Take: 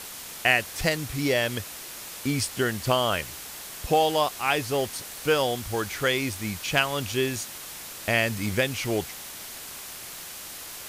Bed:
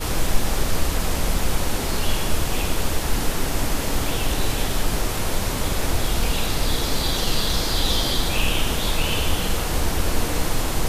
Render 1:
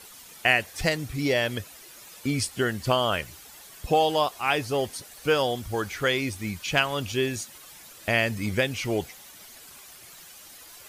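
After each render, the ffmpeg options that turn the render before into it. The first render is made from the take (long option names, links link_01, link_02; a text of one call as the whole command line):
ffmpeg -i in.wav -af "afftdn=noise_reduction=11:noise_floor=-40" out.wav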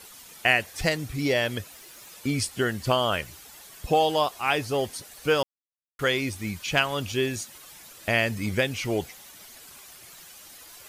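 ffmpeg -i in.wav -filter_complex "[0:a]asettb=1/sr,asplit=3[link_01][link_02][link_03];[link_01]atrim=end=1.714[link_04];[link_02]atrim=start=1.71:end=2.12,asetpts=PTS-STARTPTS,afade=type=in:duration=0.004:curve=qsin,afade=type=out:start_time=0.406:duration=0.004:curve=qsin,acrusher=bits=8:mix=0:aa=0.5[link_05];[link_03]atrim=start=2.116[link_06];[link_04][link_05]acrossfade=duration=0.004:curve1=hsin:curve2=qsin[link_07];[link_07][link_06]acrossfade=duration=0.004:curve1=qsin:curve2=hsin,asplit=3[link_08][link_09][link_10];[link_08]atrim=end=5.43,asetpts=PTS-STARTPTS,afade=type=out:start_time=5.426:duration=0.004:curve=hsin[link_11];[link_09]atrim=start=5.43:end=5.99,asetpts=PTS-STARTPTS,volume=0[link_12];[link_10]atrim=start=5.99,asetpts=PTS-STARTPTS,afade=type=in:duration=0.004:curve=hsin[link_13];[link_11][link_12][link_13]concat=n=3:v=0:a=1" out.wav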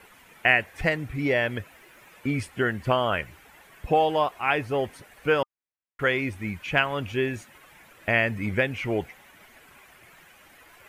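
ffmpeg -i in.wav -af "highshelf=frequency=3200:width_type=q:width=1.5:gain=-12.5,bandreject=frequency=1200:width=26" out.wav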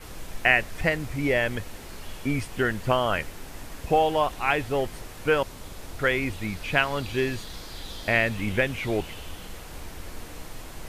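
ffmpeg -i in.wav -i bed.wav -filter_complex "[1:a]volume=-17.5dB[link_01];[0:a][link_01]amix=inputs=2:normalize=0" out.wav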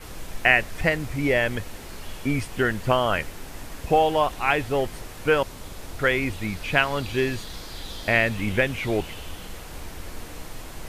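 ffmpeg -i in.wav -af "volume=2dB" out.wav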